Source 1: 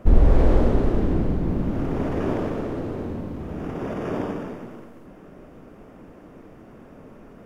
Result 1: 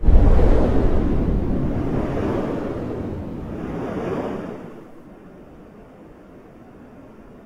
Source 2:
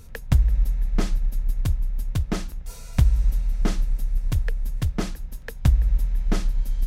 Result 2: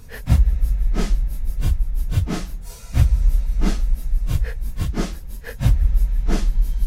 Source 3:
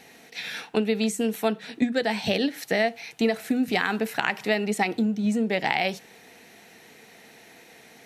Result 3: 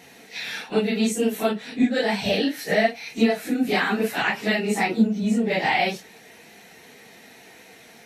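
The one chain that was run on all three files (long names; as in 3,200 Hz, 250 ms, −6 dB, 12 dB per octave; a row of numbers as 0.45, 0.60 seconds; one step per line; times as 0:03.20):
random phases in long frames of 100 ms
loudness normalisation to −23 LKFS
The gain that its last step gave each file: +2.0, +2.5, +2.5 decibels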